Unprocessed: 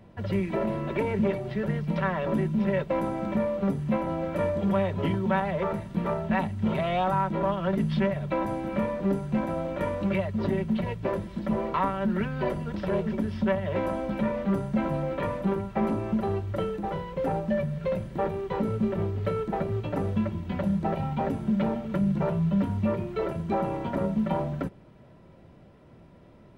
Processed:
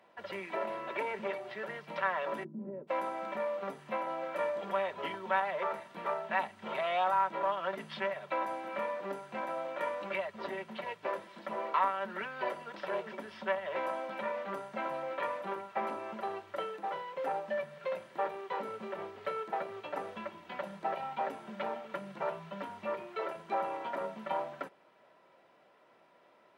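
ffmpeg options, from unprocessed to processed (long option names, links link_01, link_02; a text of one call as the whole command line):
ffmpeg -i in.wav -filter_complex "[0:a]asplit=3[link_01][link_02][link_03];[link_01]afade=type=out:start_time=2.43:duration=0.02[link_04];[link_02]lowpass=frequency=280:width_type=q:width=2.8,afade=type=in:start_time=2.43:duration=0.02,afade=type=out:start_time=2.87:duration=0.02[link_05];[link_03]afade=type=in:start_time=2.87:duration=0.02[link_06];[link_04][link_05][link_06]amix=inputs=3:normalize=0,highpass=760,highshelf=frequency=4200:gain=-7" out.wav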